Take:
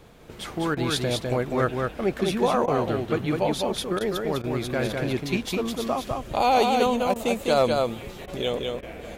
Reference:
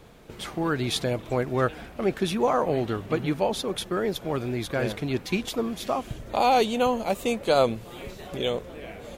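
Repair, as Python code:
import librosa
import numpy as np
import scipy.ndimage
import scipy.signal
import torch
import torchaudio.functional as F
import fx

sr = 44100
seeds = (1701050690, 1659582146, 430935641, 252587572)

y = fx.fix_declip(x, sr, threshold_db=-10.5)
y = fx.fix_interpolate(y, sr, at_s=(0.75, 2.66, 3.99, 4.42, 7.14, 8.26, 8.81), length_ms=16.0)
y = fx.fix_echo_inverse(y, sr, delay_ms=203, level_db=-3.5)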